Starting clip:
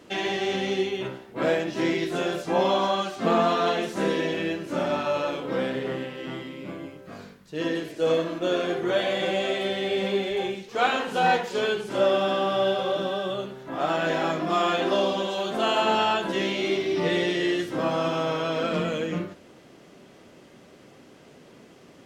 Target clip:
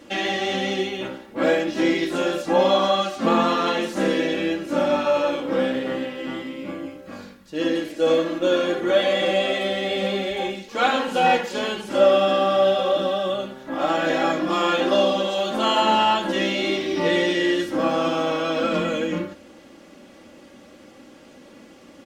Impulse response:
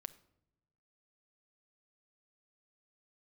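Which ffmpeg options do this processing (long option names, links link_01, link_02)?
-af "aecho=1:1:3.6:0.65,volume=2.5dB"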